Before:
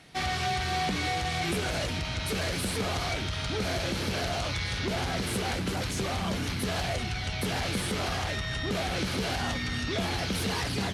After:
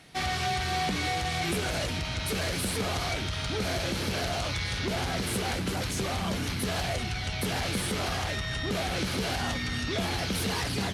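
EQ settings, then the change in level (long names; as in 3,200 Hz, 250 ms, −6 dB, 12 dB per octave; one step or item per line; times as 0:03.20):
high-shelf EQ 11,000 Hz +6 dB
0.0 dB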